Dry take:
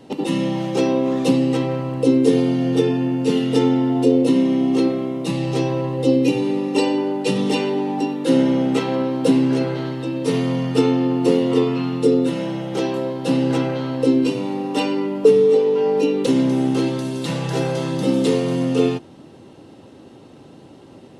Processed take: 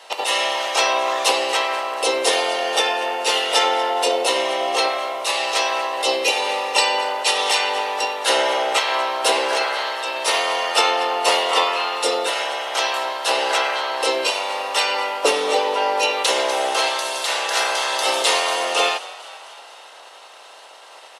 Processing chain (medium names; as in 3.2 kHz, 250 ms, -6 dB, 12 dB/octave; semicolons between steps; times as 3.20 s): spectral peaks clipped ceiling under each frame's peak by 20 dB; high-pass 540 Hz 24 dB/octave; on a send: frequency-shifting echo 239 ms, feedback 63%, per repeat +46 Hz, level -18.5 dB; on the sum: trim +2.5 dB